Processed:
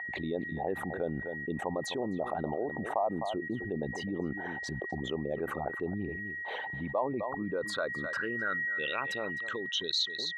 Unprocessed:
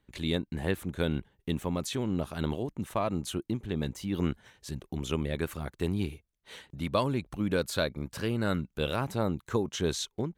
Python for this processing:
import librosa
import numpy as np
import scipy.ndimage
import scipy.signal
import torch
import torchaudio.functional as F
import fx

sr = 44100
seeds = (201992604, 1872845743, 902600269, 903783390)

p1 = fx.envelope_sharpen(x, sr, power=2.0)
p2 = fx.rider(p1, sr, range_db=4, speed_s=0.5)
p3 = p1 + (p2 * 10.0 ** (2.0 / 20.0))
p4 = p3 + 10.0 ** (-41.0 / 20.0) * np.sin(2.0 * np.pi * 1900.0 * np.arange(len(p3)) / sr)
p5 = fx.filter_sweep_bandpass(p4, sr, from_hz=780.0, to_hz=4400.0, start_s=7.22, end_s=10.03, q=6.0)
p6 = p5 + fx.echo_single(p5, sr, ms=257, db=-19.0, dry=0)
y = fx.env_flatten(p6, sr, amount_pct=70)